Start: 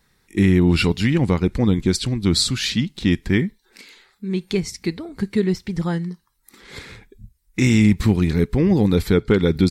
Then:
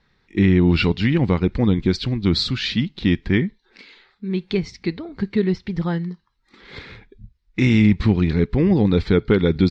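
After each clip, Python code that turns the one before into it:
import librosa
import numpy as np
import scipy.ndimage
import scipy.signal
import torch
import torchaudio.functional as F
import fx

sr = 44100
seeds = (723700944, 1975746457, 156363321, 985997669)

y = scipy.signal.sosfilt(scipy.signal.butter(4, 4500.0, 'lowpass', fs=sr, output='sos'), x)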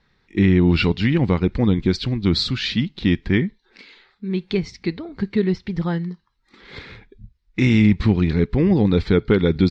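y = x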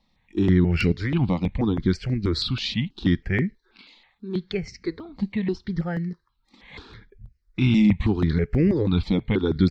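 y = fx.phaser_held(x, sr, hz=6.2, low_hz=410.0, high_hz=3500.0)
y = y * librosa.db_to_amplitude(-1.0)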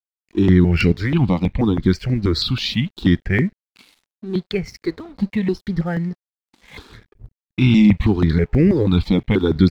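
y = np.sign(x) * np.maximum(np.abs(x) - 10.0 ** (-52.0 / 20.0), 0.0)
y = y * librosa.db_to_amplitude(5.5)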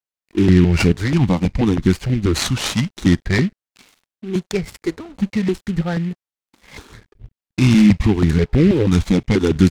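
y = fx.noise_mod_delay(x, sr, seeds[0], noise_hz=2200.0, depth_ms=0.04)
y = y * librosa.db_to_amplitude(1.0)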